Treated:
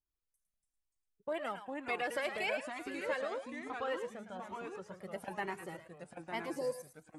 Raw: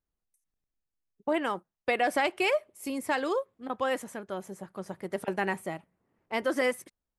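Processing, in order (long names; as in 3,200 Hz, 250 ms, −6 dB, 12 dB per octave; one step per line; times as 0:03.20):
0:02.46–0:04.92: high-frequency loss of the air 60 metres
0:06.44–0:06.87: healed spectral selection 1,100–4,000 Hz after
delay with pitch and tempo change per echo 246 ms, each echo −2 semitones, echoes 2, each echo −6 dB
feedback echo with a high-pass in the loop 108 ms, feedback 20%, high-pass 930 Hz, level −7.5 dB
flanger whose copies keep moving one way rising 1.1 Hz
level −4.5 dB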